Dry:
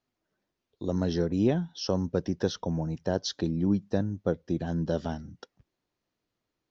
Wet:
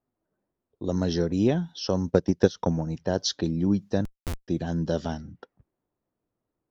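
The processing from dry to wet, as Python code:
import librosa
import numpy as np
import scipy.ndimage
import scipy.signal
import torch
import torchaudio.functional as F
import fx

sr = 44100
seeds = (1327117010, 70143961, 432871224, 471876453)

y = fx.transient(x, sr, attack_db=7, sustain_db=-10, at=(2.09, 2.91), fade=0.02)
y = fx.env_lowpass(y, sr, base_hz=1000.0, full_db=-25.5)
y = fx.schmitt(y, sr, flips_db=-24.0, at=(4.05, 4.48))
y = fx.high_shelf(y, sr, hz=4700.0, db=7.5)
y = y * 10.0 ** (2.0 / 20.0)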